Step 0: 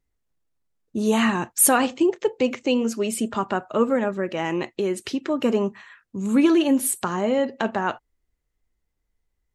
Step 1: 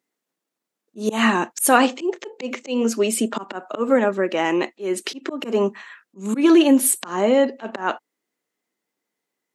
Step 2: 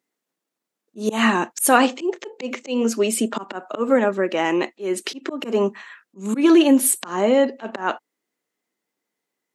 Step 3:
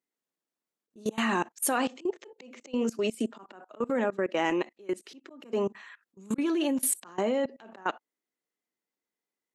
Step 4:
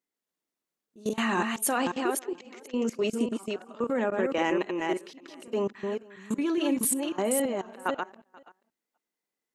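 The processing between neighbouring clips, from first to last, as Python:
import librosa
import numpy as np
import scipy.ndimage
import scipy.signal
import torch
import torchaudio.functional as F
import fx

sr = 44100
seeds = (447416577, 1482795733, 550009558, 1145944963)

y1 = fx.auto_swell(x, sr, attack_ms=165.0)
y1 = scipy.signal.sosfilt(scipy.signal.butter(4, 220.0, 'highpass', fs=sr, output='sos'), y1)
y1 = y1 * librosa.db_to_amplitude(5.5)
y2 = y1
y3 = fx.level_steps(y2, sr, step_db=22)
y3 = y3 * librosa.db_to_amplitude(-4.5)
y4 = fx.reverse_delay(y3, sr, ms=274, wet_db=-3.5)
y4 = y4 + 10.0 ** (-23.5 / 20.0) * np.pad(y4, (int(483 * sr / 1000.0), 0))[:len(y4)]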